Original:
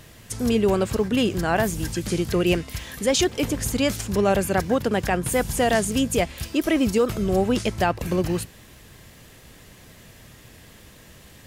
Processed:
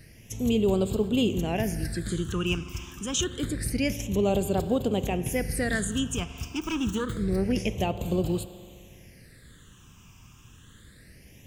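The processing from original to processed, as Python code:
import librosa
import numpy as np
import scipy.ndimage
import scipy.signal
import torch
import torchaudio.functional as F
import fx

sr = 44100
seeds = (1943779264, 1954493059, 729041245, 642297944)

y = fx.self_delay(x, sr, depth_ms=0.21, at=(6.48, 7.52))
y = fx.rev_spring(y, sr, rt60_s=2.4, pass_ms=(42,), chirp_ms=75, drr_db=12.5)
y = fx.phaser_stages(y, sr, stages=8, low_hz=550.0, high_hz=1800.0, hz=0.27, feedback_pct=30)
y = y * librosa.db_to_amplitude(-3.5)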